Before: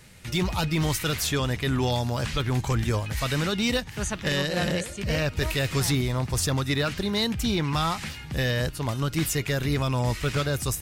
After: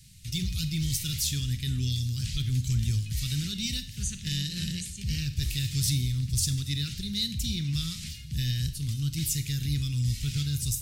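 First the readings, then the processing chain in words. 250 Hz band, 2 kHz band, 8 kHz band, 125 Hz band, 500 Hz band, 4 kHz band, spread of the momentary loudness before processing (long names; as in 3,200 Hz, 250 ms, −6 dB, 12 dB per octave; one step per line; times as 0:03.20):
−7.0 dB, −13.5 dB, 0.0 dB, −1.0 dB, below −25 dB, −2.0 dB, 3 LU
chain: Chebyshev band-stop filter 130–4,200 Hz, order 2
four-comb reverb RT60 0.54 s, combs from 28 ms, DRR 10.5 dB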